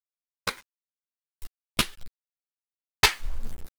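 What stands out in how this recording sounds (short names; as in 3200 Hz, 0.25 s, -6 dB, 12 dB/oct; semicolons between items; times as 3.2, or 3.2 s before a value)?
a quantiser's noise floor 8-bit, dither none; random-step tremolo 3.5 Hz, depth 75%; a shimmering, thickened sound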